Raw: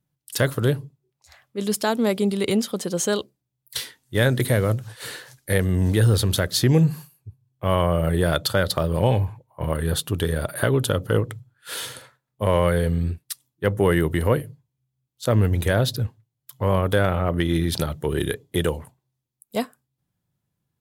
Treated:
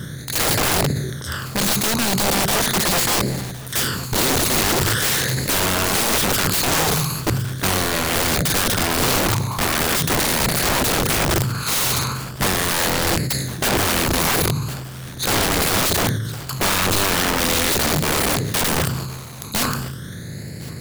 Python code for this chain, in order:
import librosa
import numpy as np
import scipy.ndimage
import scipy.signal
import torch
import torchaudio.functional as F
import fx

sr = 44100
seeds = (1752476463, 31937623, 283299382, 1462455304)

p1 = fx.bin_compress(x, sr, power=0.4)
p2 = fx.rider(p1, sr, range_db=3, speed_s=0.5)
p3 = p1 + (p2 * 10.0 ** (1.0 / 20.0))
p4 = fx.phaser_stages(p3, sr, stages=12, low_hz=550.0, high_hz=1100.0, hz=0.4, feedback_pct=40)
p5 = (np.mod(10.0 ** (10.5 / 20.0) * p4 + 1.0, 2.0) - 1.0) / 10.0 ** (10.5 / 20.0)
p6 = p5 + 10.0 ** (-21.5 / 20.0) * np.pad(p5, (int(1062 * sr / 1000.0), 0))[:len(p5)]
p7 = fx.sustainer(p6, sr, db_per_s=37.0)
y = p7 * 10.0 ** (-3.5 / 20.0)